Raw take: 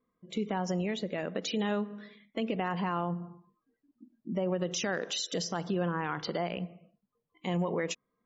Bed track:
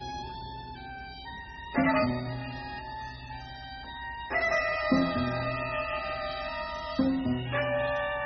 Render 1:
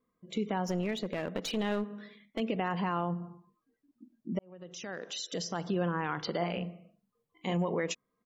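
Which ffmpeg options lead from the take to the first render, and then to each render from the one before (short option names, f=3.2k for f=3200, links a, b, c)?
-filter_complex "[0:a]asettb=1/sr,asplit=3[a][b][c];[a]atrim=end=0.664[d];[b]atrim=start=0.66:end=2.4,asetpts=PTS-STARTPTS,afade=t=in:d=0.004:c=qsin,afade=t=out:st=1.736:d=0.004:c=qsin,aeval=exprs='clip(val(0),-1,0.0178)':c=same[e];[c]atrim=start=2.396[f];[d][e]acrossfade=d=0.004:c1=hsin:c2=qsin[g];[g][f]acrossfade=d=0.004:c1=qsin:c2=hsin,asplit=3[h][i][j];[h]afade=t=out:st=6.4:d=0.02[k];[i]asplit=2[l][m];[m]adelay=41,volume=-5dB[n];[l][n]amix=inputs=2:normalize=0,afade=t=in:st=6.4:d=0.02,afade=t=out:st=7.52:d=0.02[o];[j]afade=t=in:st=7.52:d=0.02[p];[k][o][p]amix=inputs=3:normalize=0,asplit=2[q][r];[q]atrim=end=4.39,asetpts=PTS-STARTPTS,afade=t=out:st=4.386:d=0.004:c=hsin[s];[r]atrim=start=4.39,asetpts=PTS-STARTPTS,afade=t=in:d=1.37[t];[s][t]concat=n=2:v=0:a=1"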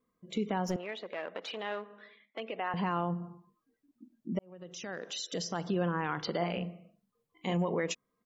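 -filter_complex "[0:a]asettb=1/sr,asplit=3[a][b][c];[a]atrim=end=0.764[d];[b]atrim=start=0.76:end=2.74,asetpts=PTS-STARTPTS,afade=t=in:d=0.004:c=qsin,afade=t=out:st=1.976:d=0.004:c=qsin,highpass=550,lowpass=3.2k[e];[c]atrim=start=2.736[f];[d][e]acrossfade=d=0.004:c1=hsin:c2=qsin[g];[g][f]acrossfade=d=0.004:c1=qsin:c2=hsin"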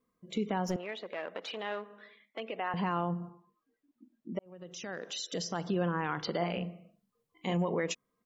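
-filter_complex "[0:a]asettb=1/sr,asplit=3[a][b][c];[a]atrim=end=3.294[d];[b]atrim=start=3.29:end=4.46,asetpts=PTS-STARTPTS,afade=t=in:d=0.004:c=qsin,afade=t=out:st=1.166:d=0.004:c=qsin,bass=f=250:g=-8,treble=f=4k:g=-6[e];[c]atrim=start=4.456[f];[d][e]acrossfade=d=0.004:c1=hsin:c2=qsin[g];[g][f]acrossfade=d=0.004:c1=qsin:c2=hsin"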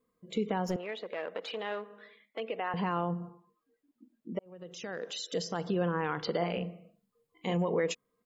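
-af "equalizer=f=470:t=o:w=0.21:g=7.5,bandreject=f=5.8k:w=11"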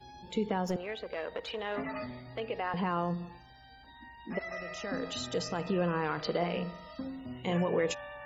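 -filter_complex "[1:a]volume=-13.5dB[a];[0:a][a]amix=inputs=2:normalize=0"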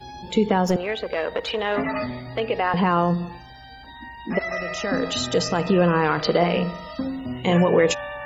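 -af "volume=12dB"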